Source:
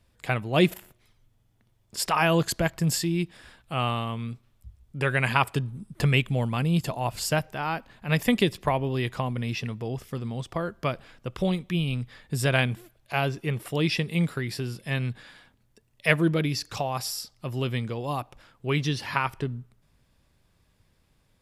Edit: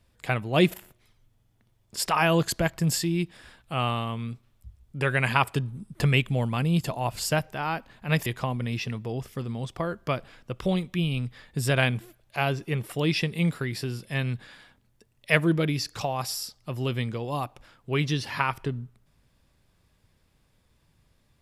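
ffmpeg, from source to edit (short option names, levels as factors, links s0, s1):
-filter_complex "[0:a]asplit=2[s0][s1];[s0]atrim=end=8.262[s2];[s1]atrim=start=9.018[s3];[s2][s3]acrossfade=d=0.004:c1=hsin:c2=hsin"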